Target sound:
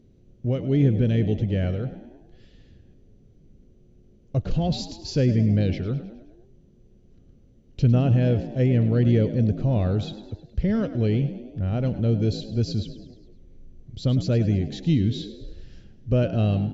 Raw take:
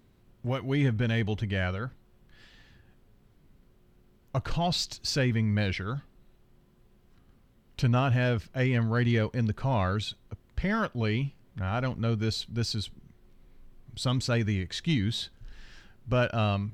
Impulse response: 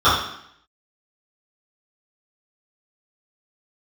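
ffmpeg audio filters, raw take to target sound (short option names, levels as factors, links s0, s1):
-filter_complex "[0:a]firequalizer=gain_entry='entry(490,0);entry(940,-19);entry(2900,-11)':delay=0.05:min_phase=1,asplit=2[s0][s1];[s1]asplit=5[s2][s3][s4][s5][s6];[s2]adelay=104,afreqshift=51,volume=0.211[s7];[s3]adelay=208,afreqshift=102,volume=0.112[s8];[s4]adelay=312,afreqshift=153,volume=0.0596[s9];[s5]adelay=416,afreqshift=204,volume=0.0316[s10];[s6]adelay=520,afreqshift=255,volume=0.0166[s11];[s7][s8][s9][s10][s11]amix=inputs=5:normalize=0[s12];[s0][s12]amix=inputs=2:normalize=0,volume=2.11" -ar 24000 -c:a mp2 -b:a 96k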